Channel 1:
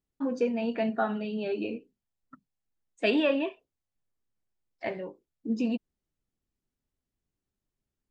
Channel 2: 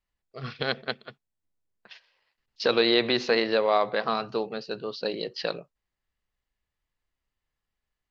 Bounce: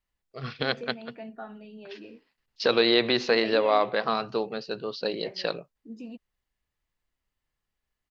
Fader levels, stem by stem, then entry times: -12.5, +0.5 dB; 0.40, 0.00 s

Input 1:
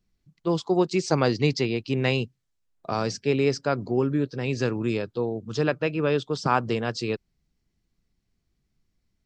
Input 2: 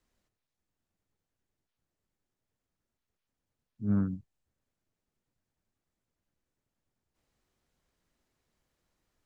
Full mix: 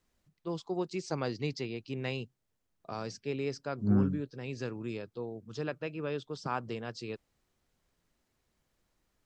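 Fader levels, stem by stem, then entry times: -12.0, +1.5 dB; 0.00, 0.00 s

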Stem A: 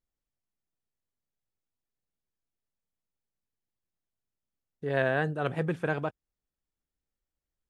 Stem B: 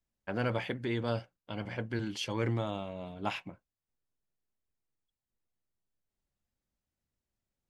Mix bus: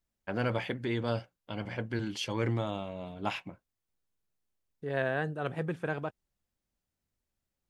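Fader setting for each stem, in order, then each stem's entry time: -4.0, +1.0 dB; 0.00, 0.00 s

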